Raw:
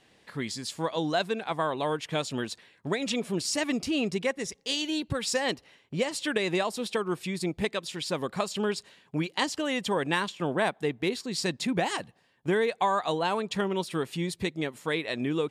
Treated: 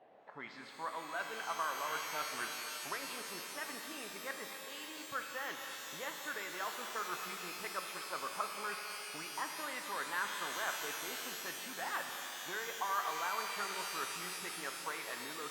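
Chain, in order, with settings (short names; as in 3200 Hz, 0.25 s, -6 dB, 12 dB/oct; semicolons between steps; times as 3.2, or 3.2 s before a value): reverse; compressor 6:1, threshold -37 dBFS, peak gain reduction 15.5 dB; reverse; auto-wah 640–1400 Hz, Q 3.3, up, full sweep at -35.5 dBFS; air absorption 180 m; split-band echo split 980 Hz, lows 0.181 s, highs 0.25 s, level -14 dB; shimmer reverb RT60 3.8 s, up +12 st, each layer -2 dB, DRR 4 dB; gain +10 dB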